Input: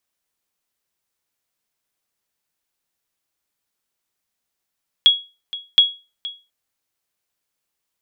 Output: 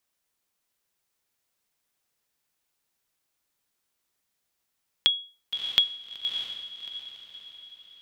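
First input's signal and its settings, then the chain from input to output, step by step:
sonar ping 3.33 kHz, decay 0.29 s, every 0.72 s, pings 2, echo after 0.47 s, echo -17.5 dB -4 dBFS
compression, threshold -20 dBFS; on a send: echo that smears into a reverb 631 ms, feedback 43%, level -7 dB

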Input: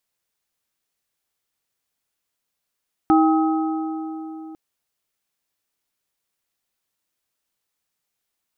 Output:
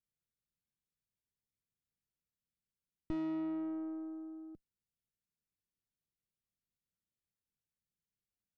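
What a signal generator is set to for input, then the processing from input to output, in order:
metal hit plate, length 1.45 s, lowest mode 318 Hz, modes 3, decay 3.88 s, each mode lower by 4 dB, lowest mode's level -12.5 dB
high-order bell 860 Hz -10.5 dB 1 oct; valve stage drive 25 dB, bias 0.55; FFT filter 190 Hz 0 dB, 280 Hz -9 dB, 1.3 kHz -18 dB

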